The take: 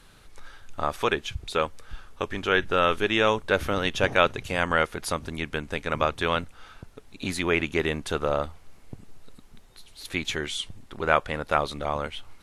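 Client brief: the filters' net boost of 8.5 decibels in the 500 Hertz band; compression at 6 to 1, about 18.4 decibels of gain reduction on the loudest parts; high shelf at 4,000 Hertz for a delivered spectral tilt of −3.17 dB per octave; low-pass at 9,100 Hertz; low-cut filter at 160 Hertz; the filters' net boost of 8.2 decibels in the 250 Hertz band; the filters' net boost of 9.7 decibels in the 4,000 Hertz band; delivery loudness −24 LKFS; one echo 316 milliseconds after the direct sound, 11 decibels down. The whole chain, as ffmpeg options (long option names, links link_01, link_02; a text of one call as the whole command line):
ffmpeg -i in.wav -af "highpass=160,lowpass=9100,equalizer=frequency=250:width_type=o:gain=9,equalizer=frequency=500:width_type=o:gain=7.5,highshelf=frequency=4000:gain=7,equalizer=frequency=4000:width_type=o:gain=8.5,acompressor=threshold=-30dB:ratio=6,aecho=1:1:316:0.282,volume=10dB" out.wav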